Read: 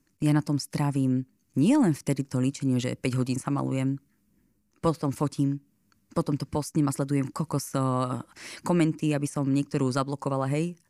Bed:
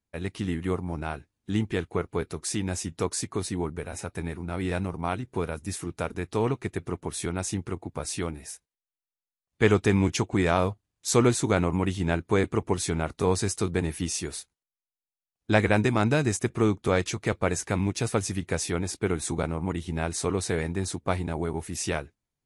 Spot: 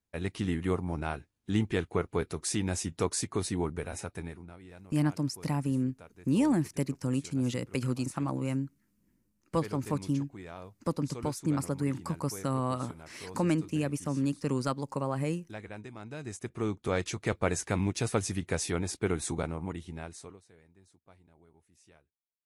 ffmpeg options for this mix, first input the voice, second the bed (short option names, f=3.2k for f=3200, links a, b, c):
-filter_complex "[0:a]adelay=4700,volume=-4.5dB[a];[1:a]volume=17dB,afade=t=out:st=3.87:d=0.72:silence=0.1,afade=t=in:st=16.07:d=1.32:silence=0.11885,afade=t=out:st=19.19:d=1.22:silence=0.0354813[b];[a][b]amix=inputs=2:normalize=0"